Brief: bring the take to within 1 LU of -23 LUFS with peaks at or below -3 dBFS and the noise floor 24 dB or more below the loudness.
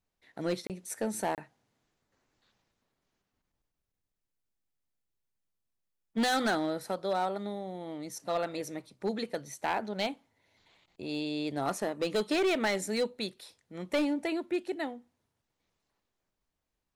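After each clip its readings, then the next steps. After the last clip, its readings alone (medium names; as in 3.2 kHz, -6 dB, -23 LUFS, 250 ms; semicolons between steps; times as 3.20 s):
clipped samples 1.1%; clipping level -23.5 dBFS; dropouts 2; longest dropout 28 ms; loudness -33.0 LUFS; peak level -23.5 dBFS; loudness target -23.0 LUFS
-> clip repair -23.5 dBFS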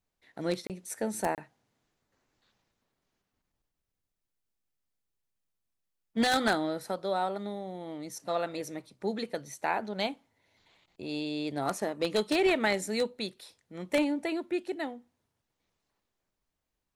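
clipped samples 0.0%; dropouts 2; longest dropout 28 ms
-> interpolate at 0.67/1.35 s, 28 ms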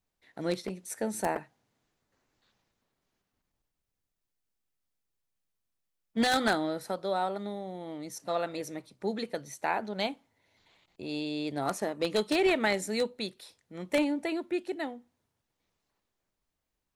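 dropouts 0; loudness -32.0 LUFS; peak level -14.5 dBFS; loudness target -23.0 LUFS
-> trim +9 dB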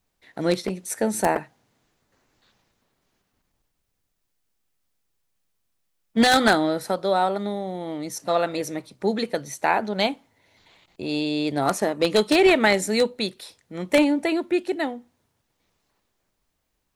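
loudness -23.0 LUFS; peak level -5.5 dBFS; noise floor -75 dBFS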